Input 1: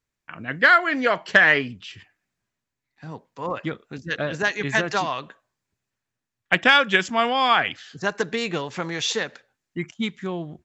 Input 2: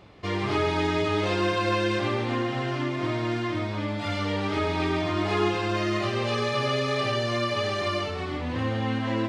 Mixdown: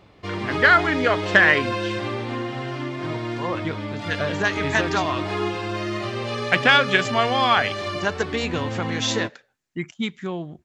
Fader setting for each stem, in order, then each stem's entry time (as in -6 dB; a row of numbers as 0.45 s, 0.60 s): 0.0 dB, -1.0 dB; 0.00 s, 0.00 s